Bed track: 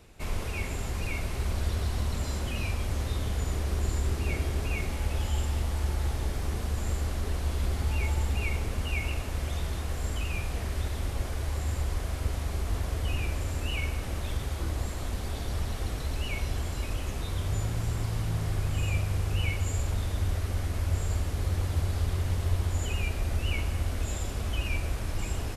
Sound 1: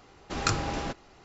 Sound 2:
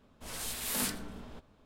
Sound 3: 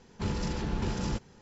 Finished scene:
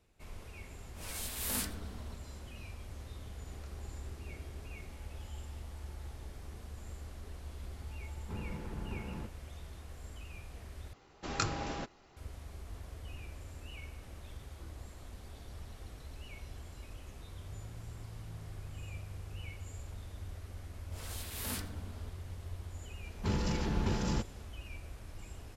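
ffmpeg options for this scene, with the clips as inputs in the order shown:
-filter_complex "[2:a]asplit=2[s0][s1];[1:a]asplit=2[s2][s3];[3:a]asplit=2[s4][s5];[0:a]volume=0.158[s6];[s0]highshelf=f=11000:g=4[s7];[s2]acompressor=threshold=0.00891:ratio=6:attack=3.2:release=140:knee=1:detection=peak[s8];[s4]lowpass=2000[s9];[s1]equalizer=f=7900:t=o:w=0.77:g=-3[s10];[s6]asplit=2[s11][s12];[s11]atrim=end=10.934[s13];[s3]atrim=end=1.24,asetpts=PTS-STARTPTS,volume=0.473[s14];[s12]atrim=start=12.166[s15];[s7]atrim=end=1.65,asetpts=PTS-STARTPTS,volume=0.631,afade=t=in:d=0.004:c=hsin,afade=t=out:st=1.646:d=0.004:c=hsin,adelay=750[s16];[s8]atrim=end=1.24,asetpts=PTS-STARTPTS,volume=0.141,afade=t=in:d=0.004:c=hsin,afade=t=out:st=1.236:d=0.004:c=hsin,adelay=139797S[s17];[s9]atrim=end=1.41,asetpts=PTS-STARTPTS,volume=0.299,afade=t=in:d=0.004:c=hsin,afade=t=out:st=1.406:d=0.004:c=hsin,adelay=8090[s18];[s10]atrim=end=1.65,asetpts=PTS-STARTPTS,volume=0.501,afade=t=in:d=0.004:c=hsin,afade=t=out:st=1.646:d=0.004:c=hsin,adelay=20700[s19];[s5]atrim=end=1.41,asetpts=PTS-STARTPTS,volume=0.891,afade=t=in:d=0.004:c=hsin,afade=t=out:st=1.406:d=0.004:c=hsin,adelay=23040[s20];[s13][s14]acrossfade=d=0.004:c1=hsin:c2=hsin[s21];[s21][s15]acrossfade=d=0.004:c1=hsin:c2=hsin[s22];[s22][s16][s17][s18][s19][s20]amix=inputs=6:normalize=0"

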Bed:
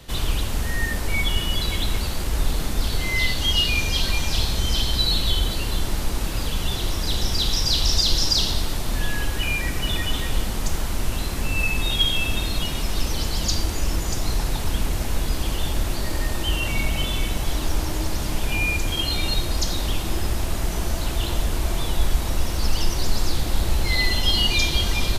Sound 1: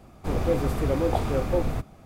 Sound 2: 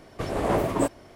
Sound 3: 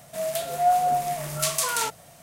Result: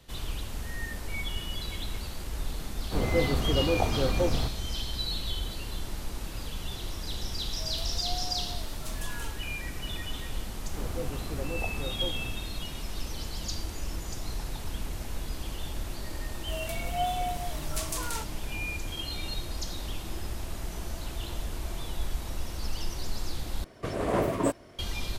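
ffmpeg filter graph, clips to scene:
-filter_complex "[1:a]asplit=2[s0][s1];[3:a]asplit=2[s2][s3];[0:a]volume=0.266[s4];[s2]asoftclip=type=tanh:threshold=0.188[s5];[2:a]bandreject=f=830:w=7.8[s6];[s4]asplit=2[s7][s8];[s7]atrim=end=23.644[s9];[s6]atrim=end=1.15,asetpts=PTS-STARTPTS,volume=0.75[s10];[s8]atrim=start=24.786[s11];[s0]atrim=end=2.05,asetpts=PTS-STARTPTS,volume=0.794,afade=t=in:d=0.004:c=hsin,afade=t=out:st=2.046:d=0.004:c=hsin,adelay=2670[s12];[s5]atrim=end=2.22,asetpts=PTS-STARTPTS,volume=0.126,afade=t=in:d=0.004:c=hsin,afade=t=out:st=2.216:d=0.004:c=hsin,adelay=7430[s13];[s1]atrim=end=2.05,asetpts=PTS-STARTPTS,volume=0.251,afade=t=in:d=0.004:c=hsin,afade=t=out:st=2.046:d=0.004:c=hsin,adelay=10490[s14];[s3]atrim=end=2.22,asetpts=PTS-STARTPTS,volume=0.316,afade=t=in:d=0.004:c=hsin,afade=t=out:st=2.216:d=0.004:c=hsin,adelay=16340[s15];[s9][s10]acrossfade=d=0.004:c1=hsin:c2=hsin[s16];[s16][s11]acrossfade=d=0.004:c1=hsin:c2=hsin[s17];[s17][s12][s13][s14][s15]amix=inputs=5:normalize=0"

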